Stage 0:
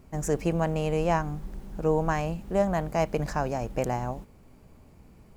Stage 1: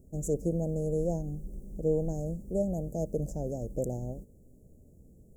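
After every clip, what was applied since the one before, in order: elliptic band-stop 550–7000 Hz, stop band 40 dB; trim -2.5 dB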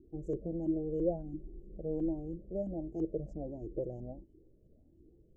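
LFO low-pass saw up 3 Hz 300–3700 Hz; small resonant body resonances 330/3000 Hz, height 16 dB, ringing for 60 ms; Shepard-style flanger rising 1.4 Hz; trim -6.5 dB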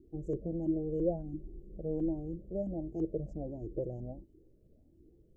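dynamic bell 100 Hz, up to +4 dB, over -53 dBFS, Q 0.78

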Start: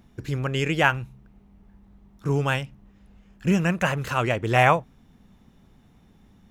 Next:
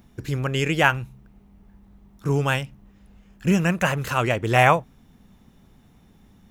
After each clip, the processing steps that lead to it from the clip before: treble shelf 8.7 kHz +7 dB; trim +1.5 dB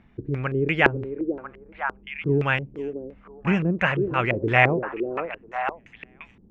repeats whose band climbs or falls 498 ms, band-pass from 380 Hz, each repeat 1.4 oct, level -2 dB; LFO low-pass square 2.9 Hz 380–2200 Hz; trim -3 dB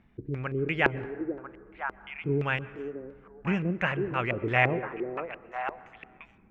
plate-style reverb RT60 1.8 s, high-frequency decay 0.35×, pre-delay 105 ms, DRR 18 dB; trim -6 dB

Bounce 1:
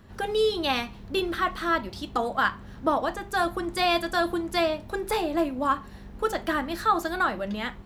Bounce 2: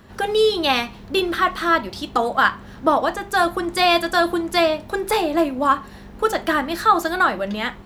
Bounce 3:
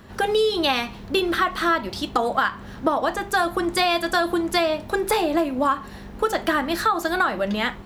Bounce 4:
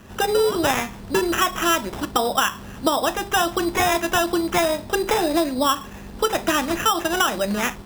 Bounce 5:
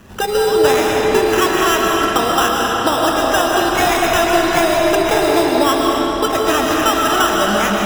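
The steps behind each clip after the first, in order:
bass shelf 160 Hz -7.5 dB; trim +7.5 dB
compression 10:1, threshold -18 dBFS, peak gain reduction 9.5 dB; trim +1.5 dB
sample-and-hold 10×; trim +1 dB
reverberation RT60 5.0 s, pre-delay 90 ms, DRR -3 dB; trim +2 dB

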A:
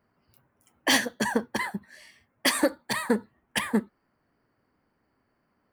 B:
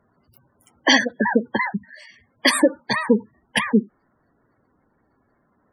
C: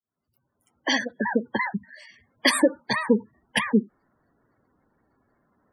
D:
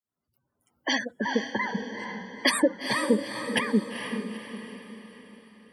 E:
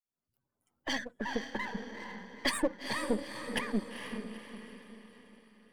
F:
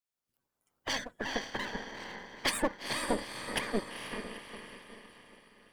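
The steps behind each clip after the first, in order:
spectral gate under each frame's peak -15 dB strong; trim +8 dB
fade-in on the opening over 1.72 s; trim -3 dB
echo that smears into a reverb 452 ms, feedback 47%, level -7 dB; trim -3 dB
partial rectifier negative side -7 dB; trim -5.5 dB
spectral peaks clipped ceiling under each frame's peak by 15 dB

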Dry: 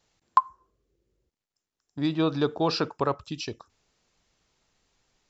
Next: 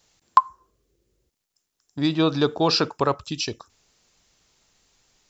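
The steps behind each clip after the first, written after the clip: treble shelf 4.1 kHz +9 dB; trim +4 dB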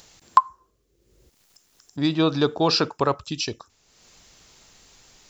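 upward compressor, threshold -42 dBFS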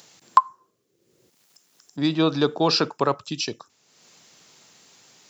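high-pass 130 Hz 24 dB/octave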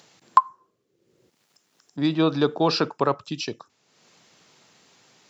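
treble shelf 5.8 kHz -12 dB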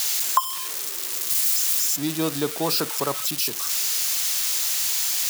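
zero-crossing glitches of -11.5 dBFS; trim -4.5 dB

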